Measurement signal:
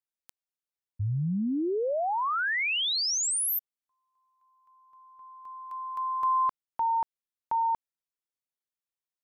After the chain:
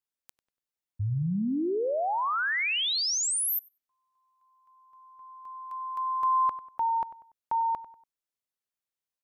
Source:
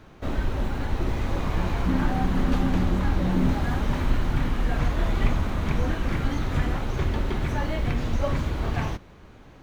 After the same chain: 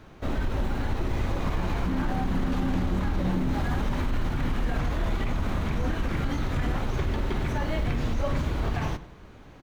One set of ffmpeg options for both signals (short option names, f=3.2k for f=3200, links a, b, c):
-filter_complex "[0:a]alimiter=limit=-18.5dB:level=0:latency=1:release=38,asplit=2[a][b];[b]adelay=96,lowpass=f=2.7k:p=1,volume=-14.5dB,asplit=2[c][d];[d]adelay=96,lowpass=f=2.7k:p=1,volume=0.37,asplit=2[e][f];[f]adelay=96,lowpass=f=2.7k:p=1,volume=0.37[g];[c][e][g]amix=inputs=3:normalize=0[h];[a][h]amix=inputs=2:normalize=0"